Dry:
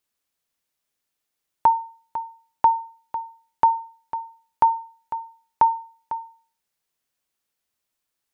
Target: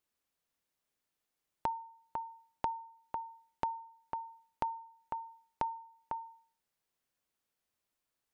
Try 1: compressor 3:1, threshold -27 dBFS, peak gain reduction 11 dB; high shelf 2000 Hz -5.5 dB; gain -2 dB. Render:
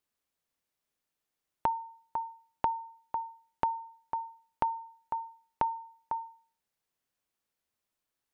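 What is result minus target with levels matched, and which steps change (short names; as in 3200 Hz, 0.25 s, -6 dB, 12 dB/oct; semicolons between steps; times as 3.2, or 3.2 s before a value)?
compressor: peak gain reduction -5.5 dB
change: compressor 3:1, threshold -35.5 dBFS, peak gain reduction 16.5 dB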